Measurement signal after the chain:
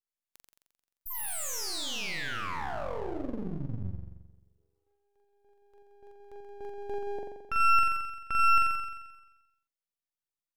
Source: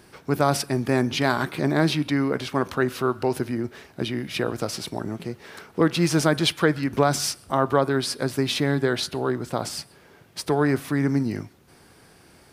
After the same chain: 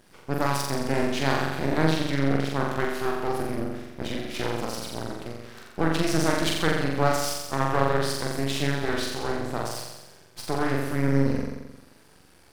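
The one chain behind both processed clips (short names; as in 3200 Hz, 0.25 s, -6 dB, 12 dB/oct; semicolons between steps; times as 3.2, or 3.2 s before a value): flutter echo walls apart 7.5 m, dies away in 1.1 s; half-wave rectifier; gain -3 dB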